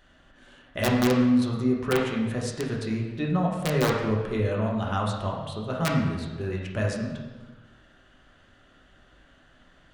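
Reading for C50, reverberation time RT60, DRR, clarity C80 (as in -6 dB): 2.5 dB, 1.3 s, -2.5 dB, 4.5 dB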